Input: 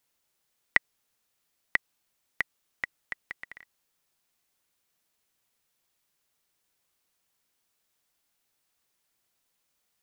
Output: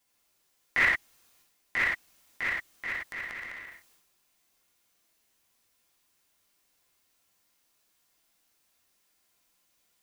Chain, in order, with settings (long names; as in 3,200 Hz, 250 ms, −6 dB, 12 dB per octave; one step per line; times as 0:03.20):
reverb whose tail is shaped and stops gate 200 ms falling, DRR −7.5 dB
transient designer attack −9 dB, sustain +8 dB
level −3 dB